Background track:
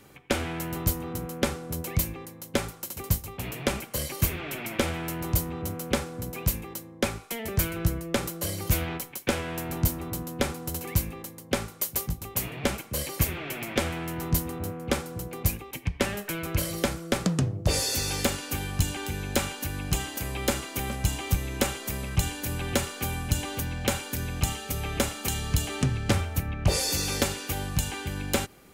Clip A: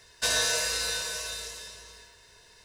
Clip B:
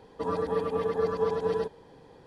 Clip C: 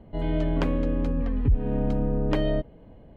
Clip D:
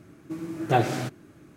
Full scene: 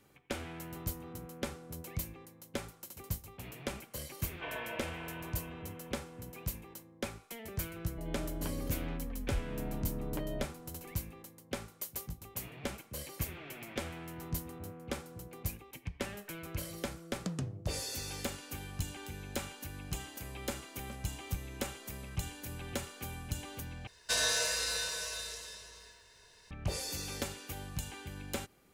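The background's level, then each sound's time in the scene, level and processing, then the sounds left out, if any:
background track -12 dB
4.19 add A -5 dB + rippled Chebyshev low-pass 3300 Hz, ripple 9 dB
7.84 add C -14 dB
23.87 replace with A -4.5 dB
not used: B, D

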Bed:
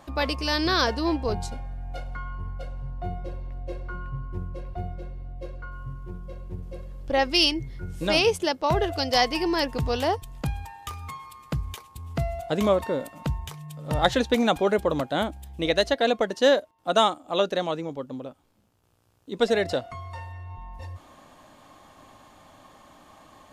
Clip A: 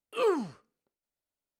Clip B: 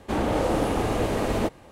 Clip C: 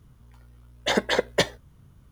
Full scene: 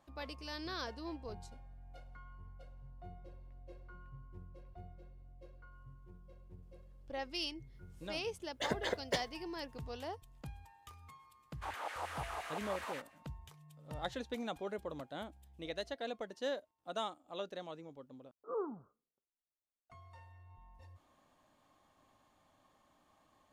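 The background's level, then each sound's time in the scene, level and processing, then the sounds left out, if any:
bed -19 dB
7.74 add C -14 dB
11.53 add B -14.5 dB, fades 0.10 s + LFO high-pass saw down 5.7 Hz 780–2100 Hz
18.31 replace with A -12 dB + steep low-pass 1400 Hz 72 dB/oct

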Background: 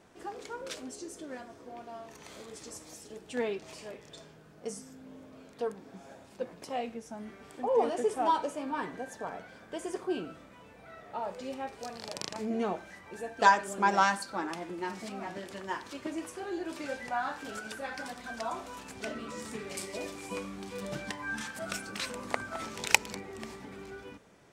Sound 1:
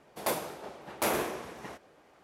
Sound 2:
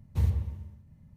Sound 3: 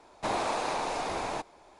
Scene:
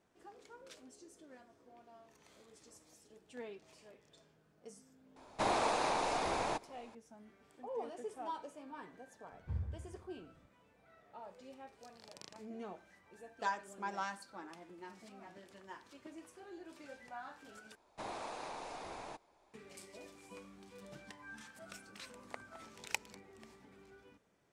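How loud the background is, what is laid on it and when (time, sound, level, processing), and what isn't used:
background -15 dB
5.16 add 3 -2.5 dB
9.32 add 2 -12.5 dB + Chebyshev low-pass 1500 Hz
17.75 replace with 3 -14 dB
not used: 1

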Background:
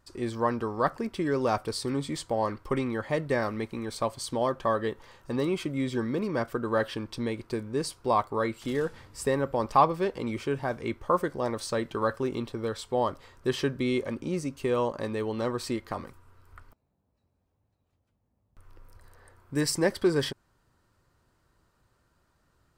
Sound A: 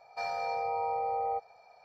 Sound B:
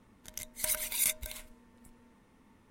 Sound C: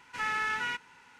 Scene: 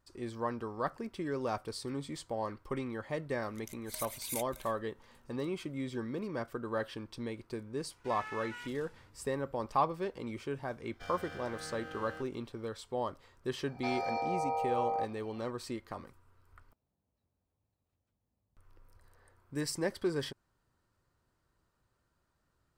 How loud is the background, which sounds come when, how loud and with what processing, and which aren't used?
background -8.5 dB
3.3 add B -10 dB
7.91 add C -13.5 dB
10.83 add A -10.5 dB + minimum comb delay 0.54 ms
13.66 add A -1.5 dB

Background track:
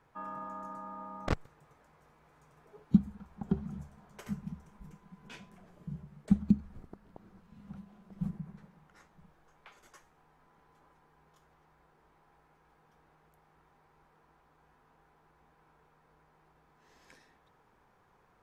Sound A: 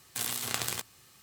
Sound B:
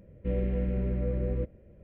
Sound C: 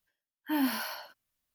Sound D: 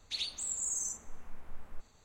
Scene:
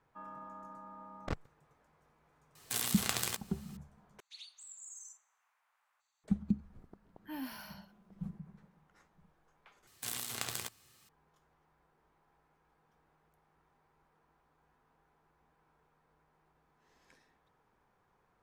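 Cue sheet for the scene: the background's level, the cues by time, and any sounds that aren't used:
background track -6.5 dB
2.55 add A -2 dB
4.2 replace with D -15 dB + HPF 890 Hz 24 dB/oct
6.79 add C -13.5 dB
9.87 replace with A -6.5 dB
not used: B

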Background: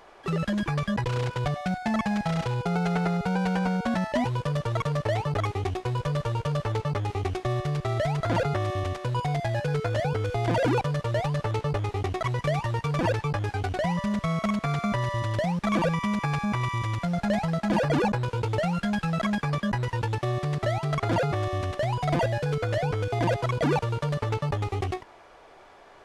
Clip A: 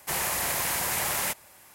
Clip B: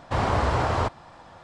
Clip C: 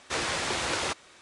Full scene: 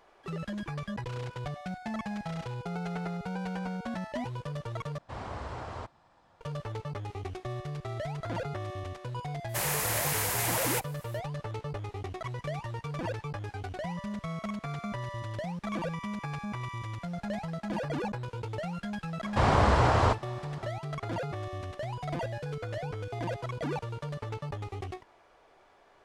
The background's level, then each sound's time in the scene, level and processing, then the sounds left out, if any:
background -9.5 dB
4.98 replace with B -16 dB
9.47 add A -2.5 dB, fades 0.05 s
19.25 add B
not used: C

